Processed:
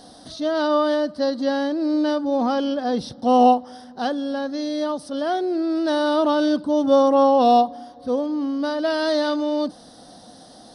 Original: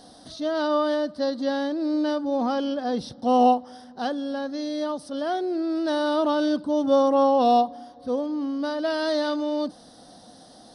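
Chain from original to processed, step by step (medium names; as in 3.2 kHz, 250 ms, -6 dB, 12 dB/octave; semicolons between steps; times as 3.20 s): 1.00–1.89 s: band-stop 3.6 kHz, Q 21; trim +3.5 dB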